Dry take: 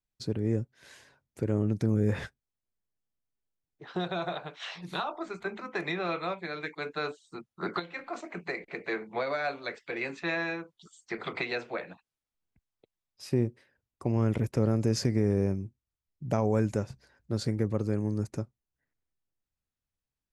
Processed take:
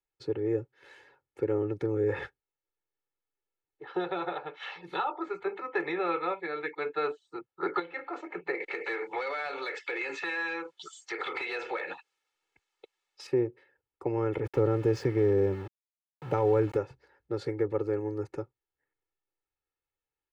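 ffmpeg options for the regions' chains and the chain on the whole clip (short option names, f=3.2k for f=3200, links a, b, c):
-filter_complex "[0:a]asettb=1/sr,asplit=3[a][b][c];[a]atrim=end=8.604[d];[b]atrim=start=8.6:end=13.27,asetpts=PTS-STARTPTS,afade=t=in:d=0.004:c=qsin,afade=t=out:st=4.666:d=0.004:c=qsin,equalizer=f=7.2k:t=o:w=1.8:g=14.5,asplit=2[e][f];[f]highpass=f=720:p=1,volume=17dB,asoftclip=type=tanh:threshold=-13dB[g];[e][g]amix=inputs=2:normalize=0,lowpass=f=6.4k:p=1,volume=-6dB,acompressor=threshold=-32dB:ratio=10:attack=3.2:release=140:knee=1:detection=peak[h];[c]atrim=start=13.266[i];[d][h]acrossfade=d=0.004:c1=hsin:c2=qsin[j];[j][i]acrossfade=d=0.004:c1=qsin:c2=hsin,asettb=1/sr,asplit=3[k][l][m];[k]atrim=end=14.454[n];[l]atrim=start=14.45:end=16.77,asetpts=PTS-STARTPTS,afade=t=in:d=0.004:c=qsin,afade=t=out:st=2.316:d=0.004:c=qsin,bass=f=250:g=6,treble=f=4k:g=-1,aeval=exprs='val(0)*gte(abs(val(0)),0.0126)':c=same[o];[m]atrim=start=16.766[p];[n][o]acrossfade=d=0.004:c1=hsin:c2=qsin[q];[q][p]acrossfade=d=0.004:c1=qsin:c2=hsin,acrossover=split=210 3100:gain=0.224 1 0.112[r][s][t];[r][s][t]amix=inputs=3:normalize=0,aecho=1:1:2.3:0.9"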